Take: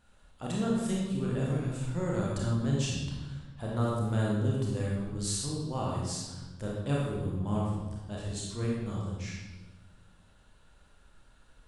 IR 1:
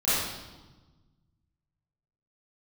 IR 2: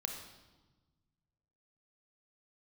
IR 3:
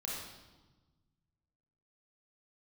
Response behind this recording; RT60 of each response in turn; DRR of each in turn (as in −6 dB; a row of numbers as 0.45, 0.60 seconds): 3; 1.2, 1.2, 1.2 seconds; −14.0, 3.5, −4.0 decibels